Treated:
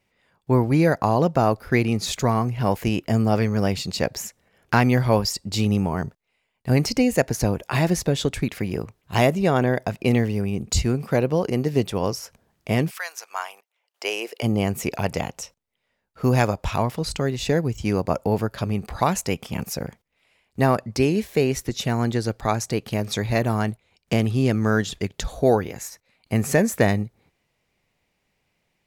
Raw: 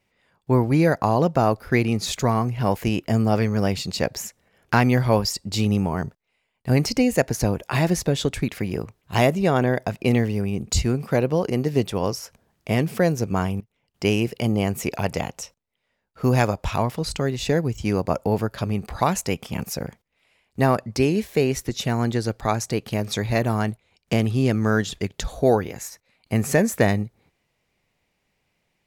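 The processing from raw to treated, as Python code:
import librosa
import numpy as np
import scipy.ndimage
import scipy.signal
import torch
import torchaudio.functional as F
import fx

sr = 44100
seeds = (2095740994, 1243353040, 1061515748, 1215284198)

y = fx.highpass(x, sr, hz=fx.line((12.89, 1200.0), (14.42, 380.0)), slope=24, at=(12.89, 14.42), fade=0.02)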